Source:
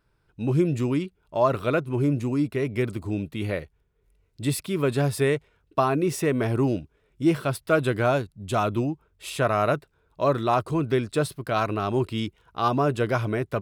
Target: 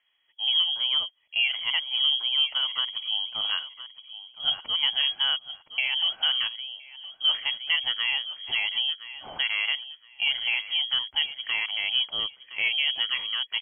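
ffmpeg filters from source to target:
-filter_complex "[0:a]highpass=92,alimiter=limit=-15dB:level=0:latency=1:release=483,aecho=1:1:1017|2034:0.2|0.0439,asplit=3[a][b][c];[a]afade=t=out:st=6.47:d=0.02[d];[b]acompressor=threshold=-37dB:ratio=4,afade=t=in:st=6.47:d=0.02,afade=t=out:st=7.23:d=0.02[e];[c]afade=t=in:st=7.23:d=0.02[f];[d][e][f]amix=inputs=3:normalize=0,lowpass=f=2.9k:t=q:w=0.5098,lowpass=f=2.9k:t=q:w=0.6013,lowpass=f=2.9k:t=q:w=0.9,lowpass=f=2.9k:t=q:w=2.563,afreqshift=-3400"

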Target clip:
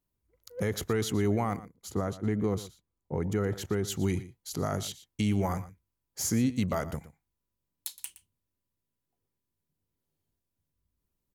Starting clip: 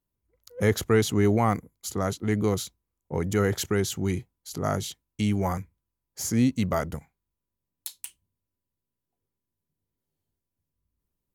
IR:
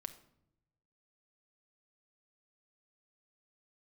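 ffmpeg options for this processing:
-filter_complex "[0:a]alimiter=limit=-18dB:level=0:latency=1:release=227,asplit=3[a][b][c];[a]afade=t=out:st=1.56:d=0.02[d];[b]highshelf=f=2.1k:g=-10,afade=t=in:st=1.56:d=0.02,afade=t=out:st=3.87:d=0.02[e];[c]afade=t=in:st=3.87:d=0.02[f];[d][e][f]amix=inputs=3:normalize=0,aecho=1:1:118:0.158"

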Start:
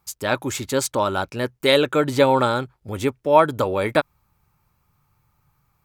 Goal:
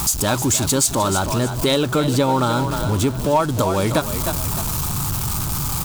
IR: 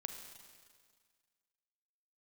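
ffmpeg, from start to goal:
-filter_complex "[0:a]aeval=exprs='val(0)+0.5*0.0531*sgn(val(0))':c=same,asettb=1/sr,asplit=3[a][b][c];[a]atrim=end=1.194[d];[b]atrim=start=1.19:end=3.4,asetpts=PTS-STARTPTS,afade=t=in:d=0.004:c=qsin,afade=t=out:st=2.206:d=0.004:c=qsin,equalizer=f=8.8k:w=0.46:g=-5[e];[c]atrim=start=3.396[f];[d][e]acrossfade=d=0.004:c1=hsin:c2=qsin[g];[g][f]acrossfade=d=0.004:c1=qsin:c2=hsin,asplit=5[h][i][j][k][l];[i]adelay=306,afreqshift=33,volume=-11dB[m];[j]adelay=612,afreqshift=66,volume=-20.6dB[n];[k]adelay=918,afreqshift=99,volume=-30.3dB[o];[l]adelay=1224,afreqshift=132,volume=-39.9dB[p];[h][m][n][o][p]amix=inputs=5:normalize=0,asoftclip=type=hard:threshold=-5dB,equalizer=f=500:t=o:w=1:g=-8,equalizer=f=2k:t=o:w=1:g=-11,equalizer=f=8k:t=o:w=1:g=5,acompressor=threshold=-26dB:ratio=2.5,volume=9dB"

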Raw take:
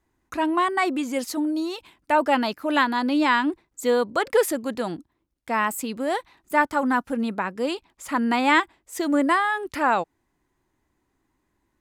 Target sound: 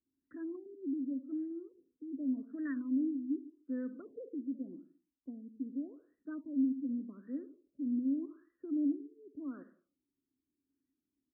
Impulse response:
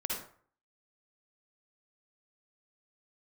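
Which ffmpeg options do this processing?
-filter_complex "[0:a]equalizer=f=750:w=6.6:g=-10.5,acrossover=split=110|2000[a][b][c];[a]acompressor=mode=upward:threshold=-59dB:ratio=2.5[d];[d][b][c]amix=inputs=3:normalize=0,asetrate=45938,aresample=44100,asplit=3[e][f][g];[e]bandpass=f=270:t=q:w=8,volume=0dB[h];[f]bandpass=f=2.29k:t=q:w=8,volume=-6dB[i];[g]bandpass=f=3.01k:t=q:w=8,volume=-9dB[j];[h][i][j]amix=inputs=3:normalize=0,asplit=2[k][l];[1:a]atrim=start_sample=2205,afade=t=out:st=0.4:d=0.01,atrim=end_sample=18081[m];[l][m]afir=irnorm=-1:irlink=0,volume=-13.5dB[n];[k][n]amix=inputs=2:normalize=0,afftfilt=real='re*lt(b*sr/1024,500*pow(2000/500,0.5+0.5*sin(2*PI*0.85*pts/sr)))':imag='im*lt(b*sr/1024,500*pow(2000/500,0.5+0.5*sin(2*PI*0.85*pts/sr)))':win_size=1024:overlap=0.75,volume=-6dB"

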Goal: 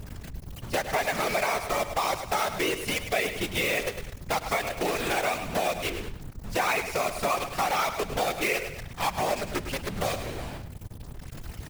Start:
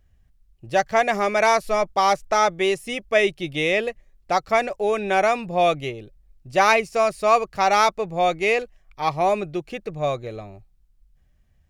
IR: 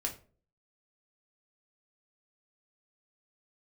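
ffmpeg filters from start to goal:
-af "aeval=exprs='val(0)+0.5*0.0631*sgn(val(0))':c=same,adynamicequalizer=threshold=0.0224:dfrequency=2400:dqfactor=1:tfrequency=2400:tqfactor=1:attack=5:release=100:ratio=0.375:range=2.5:mode=boostabove:tftype=bell,acrusher=bits=4:dc=4:mix=0:aa=0.000001,afftfilt=real='hypot(re,im)*cos(2*PI*random(0))':imag='hypot(re,im)*sin(2*PI*random(1))':win_size=512:overlap=0.75,aecho=1:1:103|206|309:0.251|0.0728|0.0211,acompressor=threshold=-27dB:ratio=3,volume=1.5dB"

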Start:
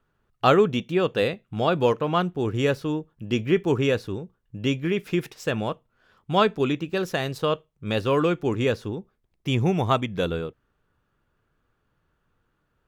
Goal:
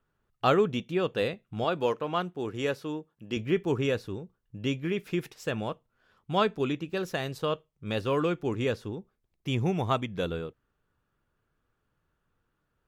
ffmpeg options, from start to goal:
-filter_complex "[0:a]asettb=1/sr,asplit=3[a][b][c];[a]atrim=end=1.644[d];[b]atrim=start=1.64:end=3.37,asetpts=PTS-STARTPTS,afade=t=in:d=0.004:c=qsin,afade=t=out:st=1.726:d=0.004:c=qsin,highpass=f=250:p=1[e];[c]atrim=start=3.366[f];[d][e]acrossfade=d=0.004:c1=hsin:c2=qsin[g];[g][f]acrossfade=d=0.004:c1=qsin:c2=hsin,volume=-5dB" -ar 48000 -c:a libmp3lame -b:a 80k

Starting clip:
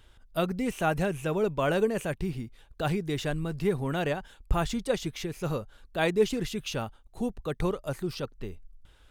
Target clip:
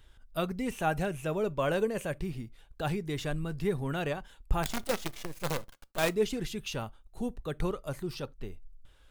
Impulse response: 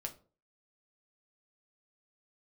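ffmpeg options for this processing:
-filter_complex "[0:a]asettb=1/sr,asplit=3[a][b][c];[a]atrim=end=4.634[d];[b]atrim=start=4.63:end=6.09,asetpts=PTS-STARTPTS,afade=t=in:d=0.004:c=qsin,afade=t=out:st=1.456:d=0.004:c=qsin,acrusher=bits=5:dc=4:mix=0:aa=0.000001[e];[c]atrim=start=6.086[f];[d][e]acrossfade=d=0.004:c1=hsin:c2=qsin[g];[g][f]acrossfade=d=0.004:c1=qsin:c2=hsin,asplit=2[h][i];[1:a]atrim=start_sample=2205,atrim=end_sample=3969,highshelf=f=8.4k:g=10[j];[i][j]afir=irnorm=-1:irlink=0,volume=-12.5dB[k];[h][k]amix=inputs=2:normalize=0,flanger=delay=0.5:depth=1.5:regen=79:speed=0.27:shape=triangular"

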